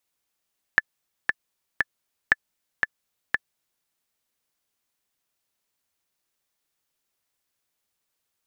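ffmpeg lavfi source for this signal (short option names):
-f lavfi -i "aevalsrc='pow(10,(-3-4.5*gte(mod(t,3*60/117),60/117))/20)*sin(2*PI*1740*mod(t,60/117))*exp(-6.91*mod(t,60/117)/0.03)':d=3.07:s=44100"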